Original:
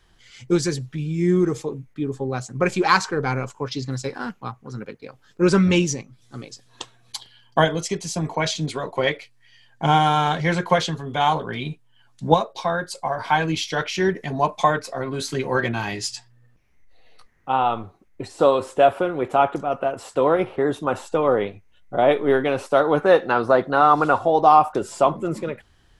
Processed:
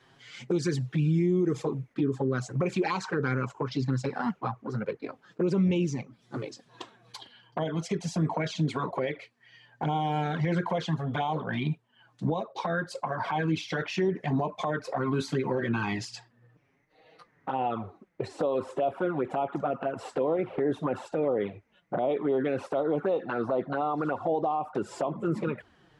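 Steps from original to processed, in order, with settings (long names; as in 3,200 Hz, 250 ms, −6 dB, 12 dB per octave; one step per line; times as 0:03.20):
downward compressor 4 to 1, threshold −26 dBFS, peak gain reduction 15 dB
flanger swept by the level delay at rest 8.1 ms, full sweep at −23 dBFS
high-pass filter 140 Hz 12 dB per octave
brickwall limiter −25.5 dBFS, peak gain reduction 10 dB
low-pass filter 2,600 Hz 6 dB per octave, from 0:03.47 1,400 Hz
level +7.5 dB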